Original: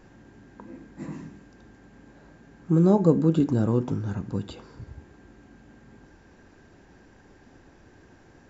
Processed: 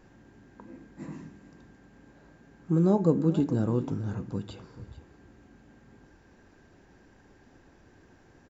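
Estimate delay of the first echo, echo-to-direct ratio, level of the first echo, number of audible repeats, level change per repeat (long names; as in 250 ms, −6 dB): 439 ms, −16.0 dB, −16.0 dB, 1, repeats not evenly spaced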